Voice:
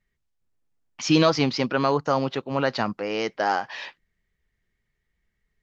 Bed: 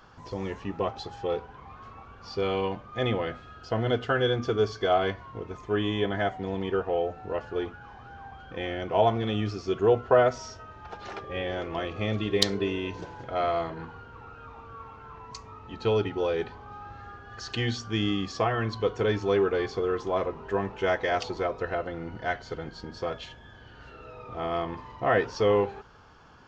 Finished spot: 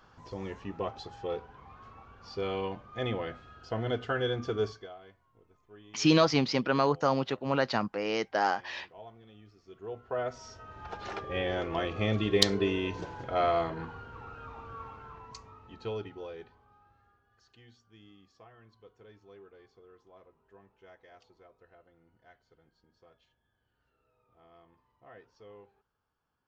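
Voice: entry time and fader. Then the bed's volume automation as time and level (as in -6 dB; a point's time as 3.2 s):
4.95 s, -4.0 dB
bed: 4.69 s -5.5 dB
4.95 s -26.5 dB
9.54 s -26.5 dB
10.81 s 0 dB
14.85 s 0 dB
17.62 s -29.5 dB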